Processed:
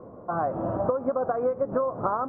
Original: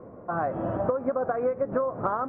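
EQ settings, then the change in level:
high shelf with overshoot 1,500 Hz −7 dB, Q 1.5
0.0 dB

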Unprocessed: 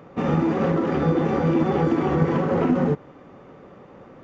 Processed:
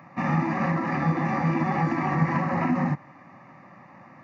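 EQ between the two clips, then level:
high-pass filter 110 Hz 24 dB per octave
parametric band 1,600 Hz +13.5 dB 0.63 octaves
phaser with its sweep stopped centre 2,200 Hz, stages 8
0.0 dB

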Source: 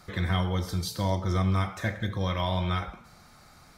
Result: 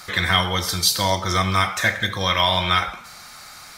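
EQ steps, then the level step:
tilt shelving filter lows −9 dB, about 730 Hz
+9.0 dB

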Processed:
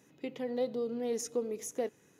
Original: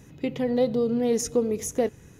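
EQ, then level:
high-pass filter 260 Hz 12 dB per octave
−9.0 dB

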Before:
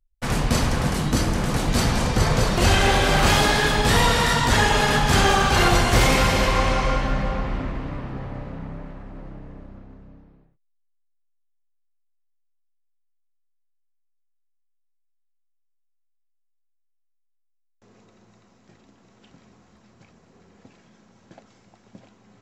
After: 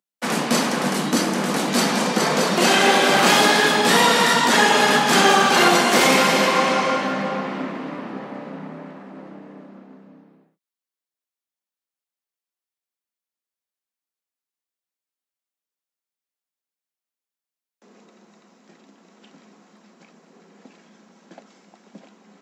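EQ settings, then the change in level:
Butterworth high-pass 180 Hz 48 dB per octave
+4.0 dB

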